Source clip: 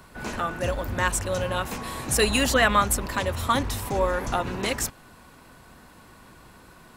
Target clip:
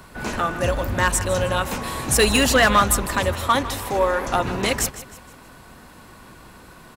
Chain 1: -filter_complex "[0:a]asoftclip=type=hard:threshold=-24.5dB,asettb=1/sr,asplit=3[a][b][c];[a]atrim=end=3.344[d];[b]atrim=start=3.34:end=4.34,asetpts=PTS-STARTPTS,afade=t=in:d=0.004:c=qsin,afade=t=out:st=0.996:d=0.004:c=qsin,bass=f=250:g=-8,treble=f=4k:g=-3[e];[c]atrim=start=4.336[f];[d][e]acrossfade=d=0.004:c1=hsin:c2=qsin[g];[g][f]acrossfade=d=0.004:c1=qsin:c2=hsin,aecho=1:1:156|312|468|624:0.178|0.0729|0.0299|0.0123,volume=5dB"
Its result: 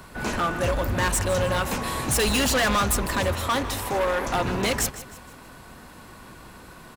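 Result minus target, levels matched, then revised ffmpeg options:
hard clip: distortion +13 dB
-filter_complex "[0:a]asoftclip=type=hard:threshold=-14.5dB,asettb=1/sr,asplit=3[a][b][c];[a]atrim=end=3.344[d];[b]atrim=start=3.34:end=4.34,asetpts=PTS-STARTPTS,afade=t=in:d=0.004:c=qsin,afade=t=out:st=0.996:d=0.004:c=qsin,bass=f=250:g=-8,treble=f=4k:g=-3[e];[c]atrim=start=4.336[f];[d][e]acrossfade=d=0.004:c1=hsin:c2=qsin[g];[g][f]acrossfade=d=0.004:c1=qsin:c2=hsin,aecho=1:1:156|312|468|624:0.178|0.0729|0.0299|0.0123,volume=5dB"

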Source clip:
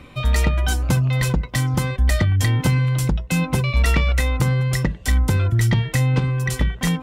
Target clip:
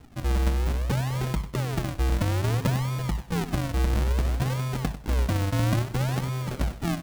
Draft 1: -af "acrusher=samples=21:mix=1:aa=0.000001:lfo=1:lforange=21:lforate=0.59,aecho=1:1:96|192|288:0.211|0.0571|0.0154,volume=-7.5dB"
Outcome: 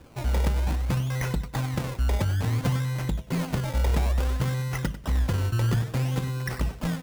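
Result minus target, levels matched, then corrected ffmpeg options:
decimation with a swept rate: distortion -7 dB
-af "acrusher=samples=75:mix=1:aa=0.000001:lfo=1:lforange=75:lforate=0.59,aecho=1:1:96|192|288:0.211|0.0571|0.0154,volume=-7.5dB"

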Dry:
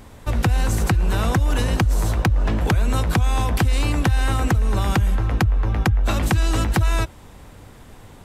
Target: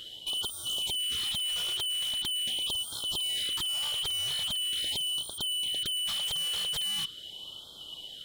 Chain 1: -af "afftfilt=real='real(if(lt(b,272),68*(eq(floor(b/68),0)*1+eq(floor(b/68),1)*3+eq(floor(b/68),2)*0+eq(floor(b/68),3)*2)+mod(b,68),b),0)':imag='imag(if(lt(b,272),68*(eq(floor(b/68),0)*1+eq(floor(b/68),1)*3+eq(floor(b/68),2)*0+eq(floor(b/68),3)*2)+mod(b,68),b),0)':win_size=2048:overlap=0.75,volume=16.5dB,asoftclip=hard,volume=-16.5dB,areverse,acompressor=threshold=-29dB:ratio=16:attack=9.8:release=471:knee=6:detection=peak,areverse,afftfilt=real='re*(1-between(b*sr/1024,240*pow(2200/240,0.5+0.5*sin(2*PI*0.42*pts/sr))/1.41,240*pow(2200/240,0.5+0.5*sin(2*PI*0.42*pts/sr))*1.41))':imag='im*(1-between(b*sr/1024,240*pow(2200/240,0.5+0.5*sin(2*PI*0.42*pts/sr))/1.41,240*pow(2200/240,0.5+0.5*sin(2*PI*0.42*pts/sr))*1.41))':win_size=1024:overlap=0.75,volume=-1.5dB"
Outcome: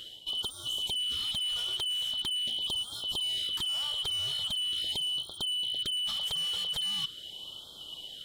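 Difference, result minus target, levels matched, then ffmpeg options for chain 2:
overloaded stage: distortion -7 dB
-af "afftfilt=real='real(if(lt(b,272),68*(eq(floor(b/68),0)*1+eq(floor(b/68),1)*3+eq(floor(b/68),2)*0+eq(floor(b/68),3)*2)+mod(b,68),b),0)':imag='imag(if(lt(b,272),68*(eq(floor(b/68),0)*1+eq(floor(b/68),1)*3+eq(floor(b/68),2)*0+eq(floor(b/68),3)*2)+mod(b,68),b),0)':win_size=2048:overlap=0.75,volume=25dB,asoftclip=hard,volume=-25dB,areverse,acompressor=threshold=-29dB:ratio=16:attack=9.8:release=471:knee=6:detection=peak,areverse,afftfilt=real='re*(1-between(b*sr/1024,240*pow(2200/240,0.5+0.5*sin(2*PI*0.42*pts/sr))/1.41,240*pow(2200/240,0.5+0.5*sin(2*PI*0.42*pts/sr))*1.41))':imag='im*(1-between(b*sr/1024,240*pow(2200/240,0.5+0.5*sin(2*PI*0.42*pts/sr))/1.41,240*pow(2200/240,0.5+0.5*sin(2*PI*0.42*pts/sr))*1.41))':win_size=1024:overlap=0.75,volume=-1.5dB"

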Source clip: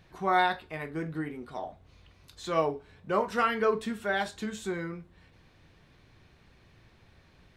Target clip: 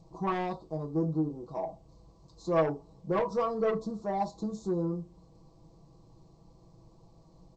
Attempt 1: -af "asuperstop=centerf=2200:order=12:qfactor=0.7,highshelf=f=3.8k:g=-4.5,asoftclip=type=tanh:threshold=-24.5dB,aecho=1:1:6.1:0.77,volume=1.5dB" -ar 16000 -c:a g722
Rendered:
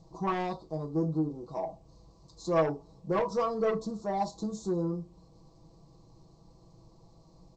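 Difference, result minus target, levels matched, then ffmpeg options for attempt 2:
8000 Hz band +6.5 dB
-af "asuperstop=centerf=2200:order=12:qfactor=0.7,highshelf=f=3.8k:g=-13.5,asoftclip=type=tanh:threshold=-24.5dB,aecho=1:1:6.1:0.77,volume=1.5dB" -ar 16000 -c:a g722

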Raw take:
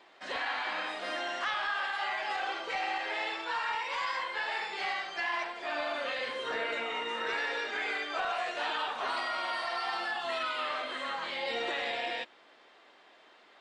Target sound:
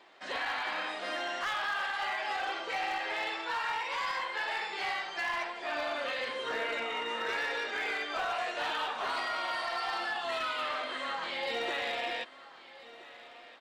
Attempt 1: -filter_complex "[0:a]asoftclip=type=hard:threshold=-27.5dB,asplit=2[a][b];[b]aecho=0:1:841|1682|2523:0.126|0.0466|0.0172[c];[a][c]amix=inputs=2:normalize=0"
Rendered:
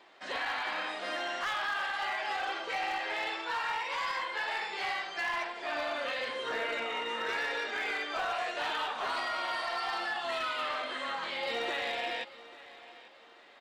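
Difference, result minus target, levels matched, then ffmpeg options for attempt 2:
echo 0.482 s early
-filter_complex "[0:a]asoftclip=type=hard:threshold=-27.5dB,asplit=2[a][b];[b]aecho=0:1:1323|2646|3969:0.126|0.0466|0.0172[c];[a][c]amix=inputs=2:normalize=0"

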